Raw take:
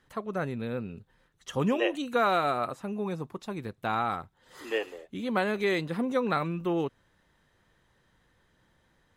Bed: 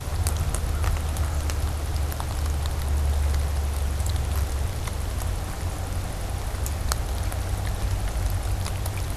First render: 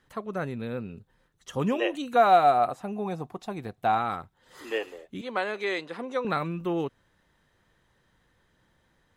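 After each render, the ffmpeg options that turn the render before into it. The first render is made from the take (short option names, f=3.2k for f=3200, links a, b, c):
-filter_complex "[0:a]asettb=1/sr,asplit=3[a][b][c];[a]atrim=end=0.954[d];[b]atrim=start=0.95:end=1.59,asetpts=PTS-STARTPTS,afade=t=in:d=0.004:c=qsin,afade=t=out:st=0.636:d=0.004:c=qsin,equalizer=f=2.4k:t=o:w=2.1:g=-3[e];[c]atrim=start=1.586[f];[d][e]acrossfade=d=0.004:c1=hsin:c2=qsin[g];[g][f]acrossfade=d=0.004:c1=qsin:c2=hsin,asettb=1/sr,asplit=3[h][i][j];[h]atrim=end=2.164[k];[i]atrim=start=2.16:end=3.98,asetpts=PTS-STARTPTS,afade=t=in:d=0.004:c=qsin,afade=t=out:st=1.816:d=0.004:c=qsin,equalizer=f=730:w=5.6:g=14[l];[j]atrim=start=3.976[m];[k][l]acrossfade=d=0.004:c1=hsin:c2=qsin[n];[n][m]acrossfade=d=0.004:c1=qsin:c2=hsin,asettb=1/sr,asplit=3[o][p][q];[o]atrim=end=5.214[r];[p]atrim=start=5.21:end=6.25,asetpts=PTS-STARTPTS,afade=t=in:d=0.004:c=qsin,afade=t=out:st=1.036:d=0.004:c=qsin,highpass=410,lowpass=7.8k[s];[q]atrim=start=6.246[t];[r][s]acrossfade=d=0.004:c1=hsin:c2=qsin[u];[u][t]acrossfade=d=0.004:c1=qsin:c2=hsin"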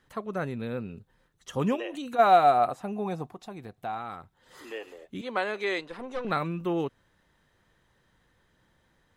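-filter_complex "[0:a]asplit=3[a][b][c];[a]afade=t=out:st=1.75:d=0.02[d];[b]acompressor=threshold=-31dB:ratio=6:attack=3.2:release=140:knee=1:detection=peak,afade=t=in:st=1.75:d=0.02,afade=t=out:st=2.18:d=0.02[e];[c]afade=t=in:st=2.18:d=0.02[f];[d][e][f]amix=inputs=3:normalize=0,asettb=1/sr,asplit=3[g][h][i];[g]atrim=end=3.304[j];[h]atrim=start=3.3:end=5.02,asetpts=PTS-STARTPTS,afade=t=in:d=0.004:c=qsin,afade=t=out:st=1.716:d=0.004:c=qsin,acompressor=threshold=-48dB:ratio=1.5:attack=3.2:release=140:knee=1:detection=peak[k];[i]atrim=start=5.016[l];[j][k]acrossfade=d=0.004:c1=hsin:c2=qsin[m];[m][l]acrossfade=d=0.004:c1=qsin:c2=hsin,asettb=1/sr,asplit=3[n][o][p];[n]atrim=end=5.814[q];[o]atrim=start=5.81:end=6.31,asetpts=PTS-STARTPTS,afade=t=in:d=0.004:c=qsin,afade=t=out:st=0.496:d=0.004:c=qsin,aeval=exprs='(tanh(22.4*val(0)+0.55)-tanh(0.55))/22.4':c=same[r];[p]atrim=start=6.306[s];[q][r]acrossfade=d=0.004:c1=hsin:c2=qsin[t];[t][s]acrossfade=d=0.004:c1=qsin:c2=hsin"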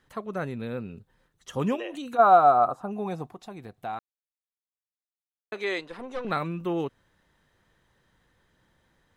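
-filter_complex "[0:a]asettb=1/sr,asplit=3[a][b][c];[a]atrim=end=2.174[d];[b]atrim=start=2.17:end=2.91,asetpts=PTS-STARTPTS,afade=t=in:d=0.004:c=qsin,afade=t=out:st=0.736:d=0.004:c=qsin,highshelf=f=1.6k:t=q:w=3:g=-7.5[e];[c]atrim=start=2.906[f];[d][e]acrossfade=d=0.004:c1=hsin:c2=qsin[g];[g][f]acrossfade=d=0.004:c1=qsin:c2=hsin,asplit=3[h][i][j];[h]atrim=end=3.99,asetpts=PTS-STARTPTS,afade=t=out:st=3.986:d=0.004:c=hsin[k];[i]atrim=start=3.99:end=5.52,asetpts=PTS-STARTPTS,volume=0[l];[j]atrim=start=5.52,asetpts=PTS-STARTPTS,afade=t=in:d=0.004:c=hsin[m];[k][l][m]concat=n=3:v=0:a=1"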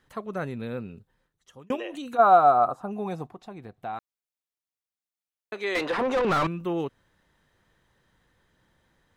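-filter_complex "[0:a]asettb=1/sr,asplit=3[a][b][c];[a]atrim=end=3.274[d];[b]atrim=start=3.27:end=3.95,asetpts=PTS-STARTPTS,afade=t=in:d=0.004:c=qsin,afade=t=out:st=0.676:d=0.004:c=qsin,highshelf=f=4.7k:g=-9.5[e];[c]atrim=start=3.946[f];[d][e]acrossfade=d=0.004:c1=hsin:c2=qsin[g];[g][f]acrossfade=d=0.004:c1=qsin:c2=hsin,asettb=1/sr,asplit=3[h][i][j];[h]atrim=end=5.754[k];[i]atrim=start=5.75:end=6.47,asetpts=PTS-STARTPTS,afade=t=in:d=0.004:c=qsin,afade=t=out:st=0.716:d=0.004:c=qsin,asplit=2[l][m];[m]highpass=f=720:p=1,volume=31dB,asoftclip=type=tanh:threshold=-15.5dB[n];[l][n]amix=inputs=2:normalize=0,lowpass=f=1.6k:p=1,volume=-6dB[o];[j]atrim=start=6.466[p];[k][o]acrossfade=d=0.004:c1=hsin:c2=qsin[q];[q][p]acrossfade=d=0.004:c1=qsin:c2=hsin,asplit=2[r][s];[r]atrim=end=1.7,asetpts=PTS-STARTPTS,afade=t=out:st=0.79:d=0.91[t];[s]atrim=start=1.7,asetpts=PTS-STARTPTS,afade=t=in:d=0.004:c=hsin[u];[t][u]concat=n=2:v=0:a=1"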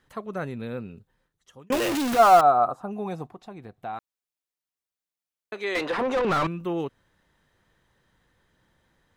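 -filter_complex "[0:a]asettb=1/sr,asplit=3[a][b][c];[a]atrim=end=1.724[d];[b]atrim=start=1.72:end=2.41,asetpts=PTS-STARTPTS,afade=t=in:d=0.004:c=qsin,afade=t=out:st=0.686:d=0.004:c=qsin,aeval=exprs='val(0)+0.5*0.0841*sgn(val(0))':c=same[e];[c]atrim=start=2.406[f];[d][e]acrossfade=d=0.004:c1=hsin:c2=qsin[g];[g][f]acrossfade=d=0.004:c1=qsin:c2=hsin"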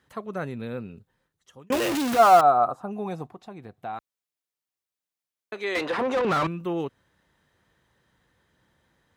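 -af "highpass=52"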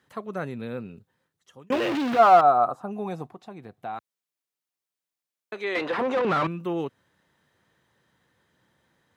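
-filter_complex "[0:a]acrossover=split=4200[a][b];[b]acompressor=threshold=-54dB:ratio=4:attack=1:release=60[c];[a][c]amix=inputs=2:normalize=0,highpass=98"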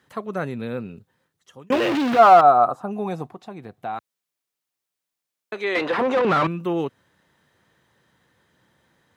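-af "volume=4.5dB,alimiter=limit=-3dB:level=0:latency=1"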